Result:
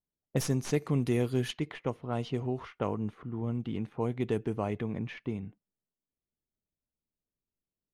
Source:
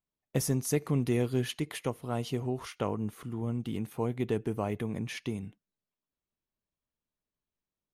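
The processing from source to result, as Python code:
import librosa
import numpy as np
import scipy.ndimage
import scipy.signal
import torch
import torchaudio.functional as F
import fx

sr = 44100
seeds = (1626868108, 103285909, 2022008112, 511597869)

y = fx.tracing_dist(x, sr, depth_ms=0.036)
y = fx.env_lowpass(y, sr, base_hz=550.0, full_db=-25.0)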